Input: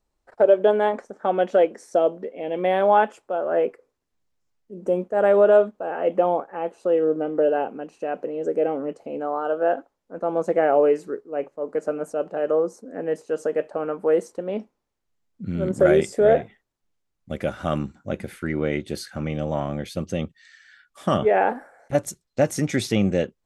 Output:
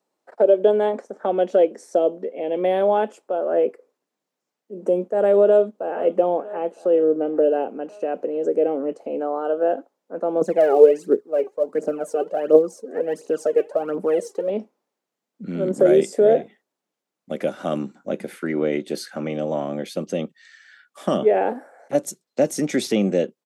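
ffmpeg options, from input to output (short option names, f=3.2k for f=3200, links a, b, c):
-filter_complex "[0:a]asplit=2[a][b];[b]afade=t=in:st=5.47:d=0.01,afade=t=out:st=6:d=0.01,aecho=0:1:480|960|1440|1920|2400|2880:0.133352|0.0800113|0.0480068|0.0288041|0.0172824|0.0103695[c];[a][c]amix=inputs=2:normalize=0,asettb=1/sr,asplit=3[d][e][f];[d]atrim=end=10.414[g];[e]atrim=start=10.41:end=14.5,asetpts=PTS-STARTPTS,afade=t=in:d=0.004:c=qsin,afade=t=out:st=4.086:d=0.004:c=qsin,aphaser=in_gain=1:out_gain=1:delay=2.7:decay=0.72:speed=1.4:type=triangular[h];[f]atrim=start=14.496[i];[g][h]acrossfade=d=0.004:c1=hsin:c2=qsin[j];[j][i]acrossfade=d=0.004:c1=qsin:c2=hsin,highpass=f=190:w=0.5412,highpass=f=190:w=1.3066,equalizer=f=570:w=0.95:g=5,acrossover=split=480|3000[k][l][m];[l]acompressor=threshold=-34dB:ratio=2[n];[k][n][m]amix=inputs=3:normalize=0,volume=1.5dB"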